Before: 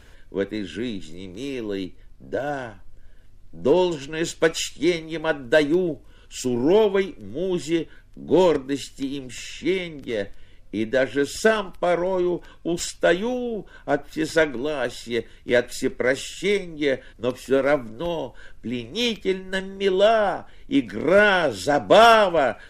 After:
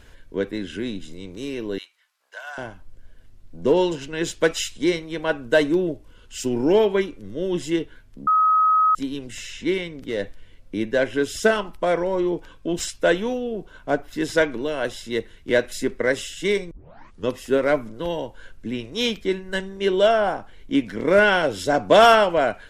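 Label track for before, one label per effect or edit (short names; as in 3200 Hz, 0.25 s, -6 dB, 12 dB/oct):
1.780000	2.580000	HPF 1000 Hz 24 dB/oct
8.270000	8.950000	bleep 1270 Hz -14 dBFS
16.710000	16.710000	tape start 0.56 s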